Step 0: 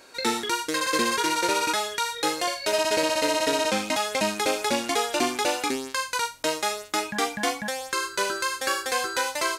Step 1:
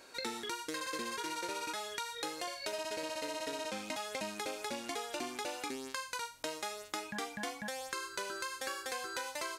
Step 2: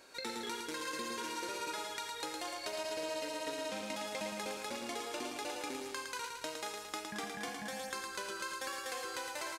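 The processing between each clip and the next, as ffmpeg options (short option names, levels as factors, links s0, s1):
-af "acompressor=threshold=0.0282:ratio=6,volume=0.531"
-af "aecho=1:1:111|222|333|444|555|666|777|888:0.562|0.332|0.196|0.115|0.0681|0.0402|0.0237|0.014,volume=0.75"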